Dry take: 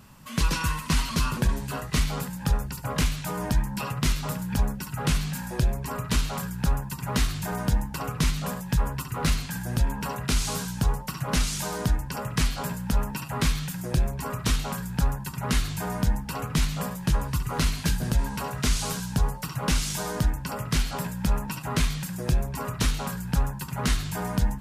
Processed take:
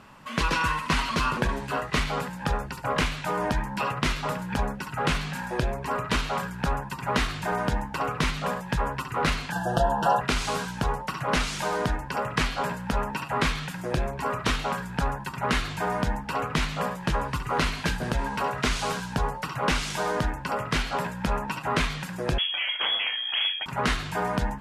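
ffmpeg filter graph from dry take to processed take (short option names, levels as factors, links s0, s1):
-filter_complex "[0:a]asettb=1/sr,asplit=3[s0][s1][s2];[s0]atrim=end=9.524[s3];[s1]atrim=start=9.52:end=10.21,asetpts=PTS-STARTPTS,afade=t=in:d=0.004:c=qsin,afade=t=out:st=0.686:d=0.004:c=qsin,asuperstop=centerf=2200:order=12:qfactor=2.4,equalizer=f=690:w=3.2:g=13,aecho=1:1:5.9:0.76,atrim=end_sample=30429[s4];[s2]atrim=start=10.206[s5];[s3][s4]acrossfade=d=0.004:c1=hsin:c2=qsin[s6];[s6][s5]acrossfade=d=0.004:c1=qsin:c2=hsin,asettb=1/sr,asplit=3[s7][s8][s9];[s7]atrim=end=22.384[s10];[s8]atrim=start=22.38:end=23.66,asetpts=PTS-STARTPTS,afade=t=in:d=0.004:c=qsin,afade=t=out:st=1.276:d=0.004:c=qsin,aeval=exprs='0.075*(abs(mod(val(0)/0.075+3,4)-2)-1)':c=same,lowpass=f=2900:t=q:w=0.5098,lowpass=f=2900:t=q:w=0.6013,lowpass=f=2900:t=q:w=0.9,lowpass=f=2900:t=q:w=2.563,afreqshift=-3400[s11];[s9]atrim=start=23.656[s12];[s10][s11]acrossfade=d=0.004:c1=hsin:c2=qsin[s13];[s13][s12]acrossfade=d=0.004:c1=qsin:c2=hsin,lowpass=11000,bass=f=250:g=-12,treble=f=4000:g=-13,volume=2.11"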